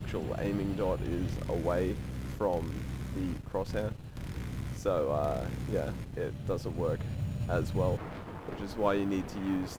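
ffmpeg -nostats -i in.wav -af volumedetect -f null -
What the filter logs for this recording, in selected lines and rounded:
mean_volume: -32.9 dB
max_volume: -14.6 dB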